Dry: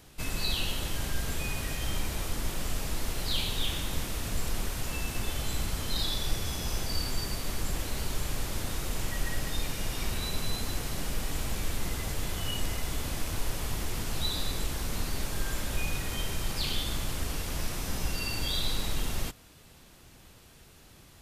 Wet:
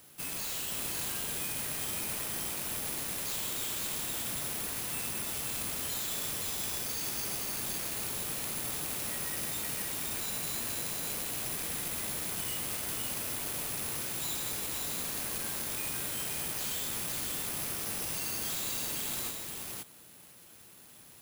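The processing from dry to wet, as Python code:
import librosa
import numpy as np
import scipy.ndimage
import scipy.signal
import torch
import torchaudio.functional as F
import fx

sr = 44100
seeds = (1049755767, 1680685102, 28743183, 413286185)

p1 = fx.rattle_buzz(x, sr, strikes_db=-33.0, level_db=-21.0)
p2 = scipy.signal.sosfilt(scipy.signal.butter(2, 130.0, 'highpass', fs=sr, output='sos'), p1)
p3 = 10.0 ** (-32.0 / 20.0) * (np.abs((p2 / 10.0 ** (-32.0 / 20.0) + 3.0) % 4.0 - 2.0) - 1.0)
p4 = p3 + fx.echo_single(p3, sr, ms=519, db=-3.0, dry=0)
p5 = (np.kron(p4[::4], np.eye(4)[0]) * 4)[:len(p4)]
y = p5 * 10.0 ** (-5.5 / 20.0)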